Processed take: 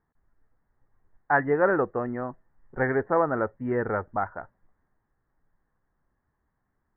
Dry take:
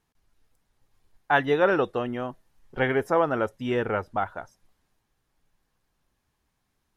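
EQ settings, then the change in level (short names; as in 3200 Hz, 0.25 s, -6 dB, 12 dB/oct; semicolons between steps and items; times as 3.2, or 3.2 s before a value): Chebyshev low-pass 1900 Hz, order 5; 0.0 dB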